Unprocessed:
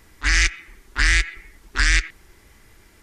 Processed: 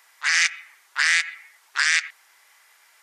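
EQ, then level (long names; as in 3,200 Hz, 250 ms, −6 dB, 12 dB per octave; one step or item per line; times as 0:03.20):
high-pass filter 750 Hz 24 dB per octave
0.0 dB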